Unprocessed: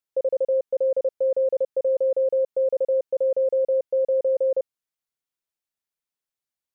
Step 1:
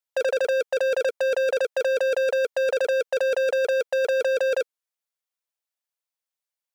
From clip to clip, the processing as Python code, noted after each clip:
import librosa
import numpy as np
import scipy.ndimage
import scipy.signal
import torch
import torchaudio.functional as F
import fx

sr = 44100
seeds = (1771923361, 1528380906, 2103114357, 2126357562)

y = scipy.signal.sosfilt(scipy.signal.cheby1(5, 1.0, 470.0, 'highpass', fs=sr, output='sos'), x)
y = fx.over_compress(y, sr, threshold_db=-27.0, ratio=-0.5)
y = fx.leveller(y, sr, passes=5)
y = y * 10.0 ** (1.5 / 20.0)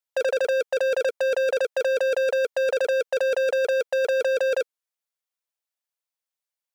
y = x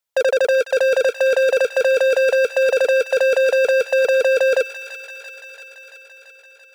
y = fx.echo_wet_highpass(x, sr, ms=338, feedback_pct=72, hz=1500.0, wet_db=-8.5)
y = y * 10.0 ** (6.5 / 20.0)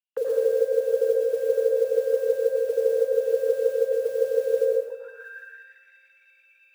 y = fx.auto_wah(x, sr, base_hz=460.0, top_hz=2800.0, q=16.0, full_db=-22.5, direction='down')
y = fx.mod_noise(y, sr, seeds[0], snr_db=27)
y = fx.rev_plate(y, sr, seeds[1], rt60_s=1.1, hf_ratio=0.6, predelay_ms=85, drr_db=-1.0)
y = y * 10.0 ** (1.0 / 20.0)